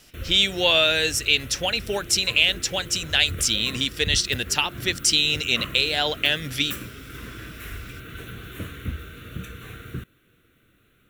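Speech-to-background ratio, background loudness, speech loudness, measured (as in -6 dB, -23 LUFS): 16.0 dB, -37.0 LUFS, -21.0 LUFS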